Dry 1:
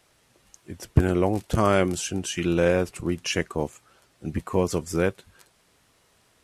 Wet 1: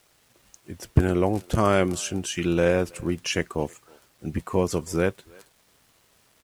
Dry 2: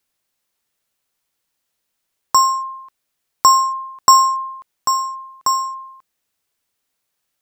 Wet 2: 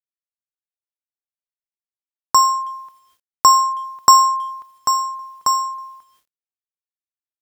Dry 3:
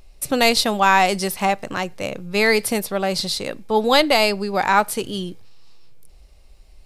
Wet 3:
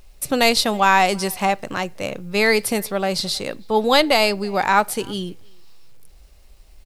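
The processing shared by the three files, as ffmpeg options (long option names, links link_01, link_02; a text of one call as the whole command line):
ffmpeg -i in.wav -filter_complex "[0:a]asplit=2[link_01][link_02];[link_02]adelay=320,highpass=300,lowpass=3400,asoftclip=type=hard:threshold=-9.5dB,volume=-26dB[link_03];[link_01][link_03]amix=inputs=2:normalize=0,acrusher=bits=9:mix=0:aa=0.000001" out.wav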